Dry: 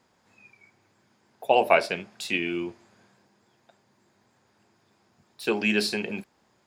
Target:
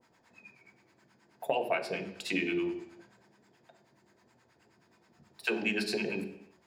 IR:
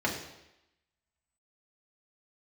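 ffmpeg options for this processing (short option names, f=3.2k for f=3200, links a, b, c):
-filter_complex "[0:a]acrossover=split=700[a][b];[a]aeval=exprs='val(0)*(1-1/2+1/2*cos(2*PI*9.4*n/s))':c=same[c];[b]aeval=exprs='val(0)*(1-1/2-1/2*cos(2*PI*9.4*n/s))':c=same[d];[c][d]amix=inputs=2:normalize=0,acompressor=threshold=-31dB:ratio=12,asplit=2[e][f];[1:a]atrim=start_sample=2205,afade=t=out:st=0.44:d=0.01,atrim=end_sample=19845[g];[f][g]afir=irnorm=-1:irlink=0,volume=-9.5dB[h];[e][h]amix=inputs=2:normalize=0"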